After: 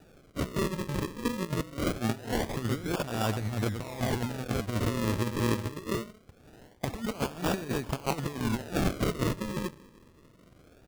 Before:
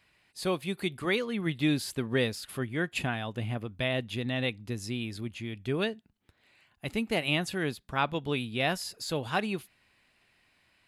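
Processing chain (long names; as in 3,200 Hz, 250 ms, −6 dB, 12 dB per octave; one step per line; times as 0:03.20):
slap from a distant wall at 19 metres, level −12 dB
compressor whose output falls as the input rises −36 dBFS, ratio −0.5
convolution reverb RT60 0.90 s, pre-delay 58 ms, DRR 19 dB
sample-and-hold swept by an LFO 41×, swing 100% 0.23 Hz
level +5.5 dB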